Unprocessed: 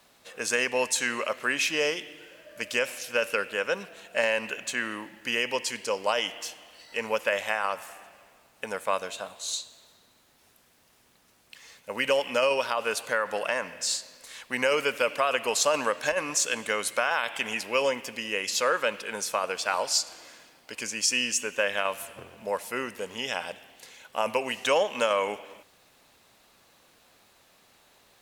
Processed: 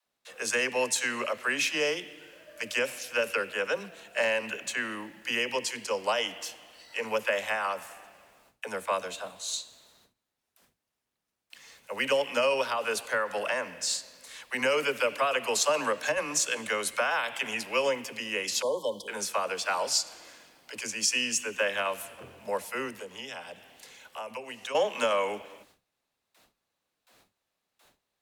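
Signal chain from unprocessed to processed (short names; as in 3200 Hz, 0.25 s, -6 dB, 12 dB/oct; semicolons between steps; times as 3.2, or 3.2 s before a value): gate with hold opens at -48 dBFS; dispersion lows, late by 60 ms, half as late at 310 Hz; 18.62–19.08 brick-wall FIR band-stop 1100–3000 Hz; 22.9–24.75 compressor 2.5:1, threshold -39 dBFS, peak gain reduction 13 dB; gain -1.5 dB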